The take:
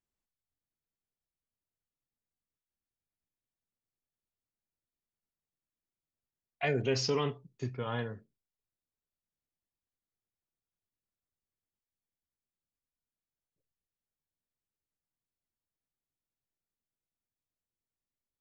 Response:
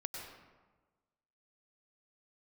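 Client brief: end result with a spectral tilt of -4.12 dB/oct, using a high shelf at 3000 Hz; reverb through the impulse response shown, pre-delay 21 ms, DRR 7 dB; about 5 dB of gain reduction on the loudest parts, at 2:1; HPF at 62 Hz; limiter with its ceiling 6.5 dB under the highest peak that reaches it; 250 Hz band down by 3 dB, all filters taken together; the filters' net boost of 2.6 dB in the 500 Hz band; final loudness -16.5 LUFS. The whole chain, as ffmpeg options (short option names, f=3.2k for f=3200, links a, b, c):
-filter_complex "[0:a]highpass=62,equalizer=f=250:t=o:g=-6,equalizer=f=500:t=o:g=5,highshelf=f=3k:g=7.5,acompressor=threshold=-33dB:ratio=2,alimiter=level_in=3.5dB:limit=-24dB:level=0:latency=1,volume=-3.5dB,asplit=2[a][b];[1:a]atrim=start_sample=2205,adelay=21[c];[b][c]afir=irnorm=-1:irlink=0,volume=-6.5dB[d];[a][d]amix=inputs=2:normalize=0,volume=21.5dB"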